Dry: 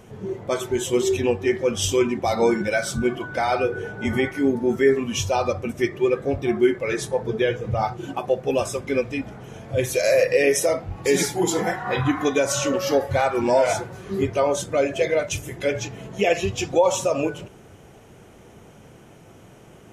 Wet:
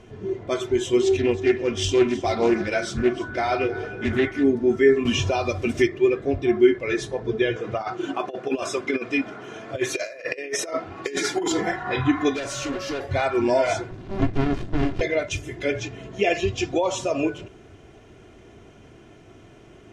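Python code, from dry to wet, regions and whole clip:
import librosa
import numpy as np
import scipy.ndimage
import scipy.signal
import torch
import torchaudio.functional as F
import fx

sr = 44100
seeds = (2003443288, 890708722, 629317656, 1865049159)

y = fx.chain(x, sr, fx.echo_single(ms=314, db=-16.5),
    fx.doppler_dist(depth_ms=0.25), at=(1.02, 4.44))
y = fx.chain(y, sr, fx.quant_dither(seeds[0], bits=10, dither='triangular'),
    fx.band_squash(depth_pct=100), at=(5.05, 5.87))
y = fx.chain(y, sr, fx.highpass(hz=240.0, slope=12),
    fx.peak_eq(hz=1300.0, db=6.5, octaves=0.7),
    fx.over_compress(threshold_db=-24.0, ratio=-0.5), at=(7.56, 11.52))
y = fx.chain(y, sr, fx.peak_eq(hz=9400.0, db=5.0, octaves=0.6),
    fx.clip_hard(threshold_db=-25.0), at=(12.34, 13.05))
y = fx.chain(y, sr, fx.highpass(hz=46.0, slope=12),
    fx.peak_eq(hz=250.0, db=5.0, octaves=2.0),
    fx.running_max(window=65), at=(13.91, 15.01))
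y = scipy.signal.sosfilt(scipy.signal.butter(2, 5300.0, 'lowpass', fs=sr, output='sos'), y)
y = fx.peak_eq(y, sr, hz=850.0, db=-4.5, octaves=1.2)
y = y + 0.47 * np.pad(y, (int(2.9 * sr / 1000.0), 0))[:len(y)]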